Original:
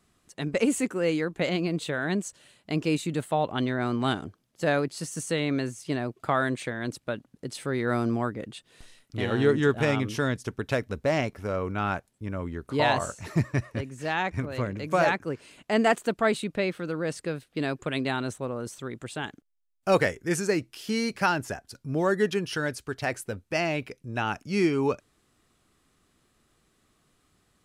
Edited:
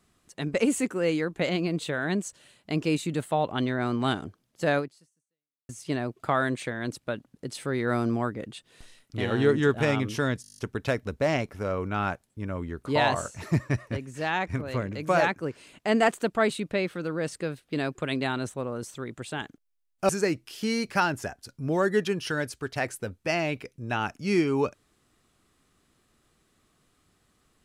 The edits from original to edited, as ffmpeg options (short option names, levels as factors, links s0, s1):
-filter_complex "[0:a]asplit=11[s0][s1][s2][s3][s4][s5][s6][s7][s8][s9][s10];[s0]atrim=end=5.69,asetpts=PTS-STARTPTS,afade=t=out:st=4.78:d=0.91:c=exp[s11];[s1]atrim=start=5.69:end=10.442,asetpts=PTS-STARTPTS,afade=t=in:d=0.004:c=hsin[s12];[s2]atrim=start=10.418:end=10.442[s13];[s3]atrim=start=10.418:end=10.442[s14];[s4]atrim=start=10.418:end=10.442[s15];[s5]atrim=start=10.418:end=10.442[s16];[s6]atrim=start=10.418:end=10.442[s17];[s7]atrim=start=10.418:end=10.442[s18];[s8]atrim=start=10.418:end=10.442[s19];[s9]atrim=start=10.418:end=19.932[s20];[s10]atrim=start=20.348[s21];[s11][s12]concat=n=2:v=0:a=1[s22];[s22][s13]acrossfade=d=0.004:c1=hsin:c2=hsin[s23];[s23][s14]acrossfade=d=0.004:c1=hsin:c2=hsin[s24];[s24][s15]acrossfade=d=0.004:c1=hsin:c2=hsin[s25];[s25][s16]acrossfade=d=0.004:c1=hsin:c2=hsin[s26];[s26][s17]acrossfade=d=0.004:c1=hsin:c2=hsin[s27];[s27][s18]acrossfade=d=0.004:c1=hsin:c2=hsin[s28];[s28][s19]acrossfade=d=0.004:c1=hsin:c2=hsin[s29];[s29][s20]acrossfade=d=0.004:c1=hsin:c2=hsin[s30];[s30][s21]acrossfade=d=0.004:c1=hsin:c2=hsin"